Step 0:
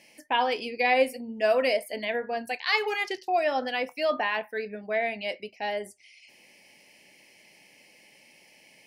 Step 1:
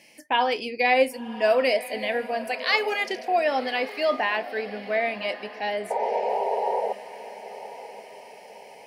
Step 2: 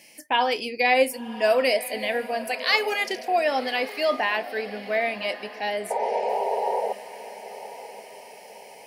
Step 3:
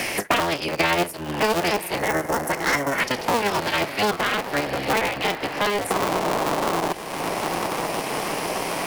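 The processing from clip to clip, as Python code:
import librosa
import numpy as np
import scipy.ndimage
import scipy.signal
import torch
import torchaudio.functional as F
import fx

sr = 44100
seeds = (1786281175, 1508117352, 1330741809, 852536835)

y1 = scipy.signal.sosfilt(scipy.signal.butter(2, 45.0, 'highpass', fs=sr, output='sos'), x)
y1 = fx.spec_paint(y1, sr, seeds[0], shape='noise', start_s=5.9, length_s=1.03, low_hz=390.0, high_hz=970.0, level_db=-28.0)
y1 = fx.echo_diffused(y1, sr, ms=1076, feedback_pct=46, wet_db=-14.5)
y1 = F.gain(torch.from_numpy(y1), 2.5).numpy()
y2 = fx.high_shelf(y1, sr, hz=6600.0, db=10.5)
y3 = fx.cycle_switch(y2, sr, every=3, mode='inverted')
y3 = fx.spec_box(y3, sr, start_s=1.99, length_s=1.01, low_hz=2200.0, high_hz=5200.0, gain_db=-11)
y3 = fx.band_squash(y3, sr, depth_pct=100)
y3 = F.gain(torch.from_numpy(y3), 1.5).numpy()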